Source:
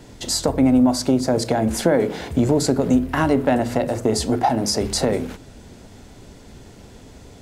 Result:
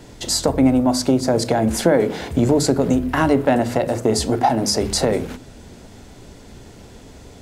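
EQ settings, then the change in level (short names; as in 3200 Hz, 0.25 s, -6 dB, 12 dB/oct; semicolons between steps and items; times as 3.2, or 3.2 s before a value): notches 50/100/150/200/250 Hz; +2.0 dB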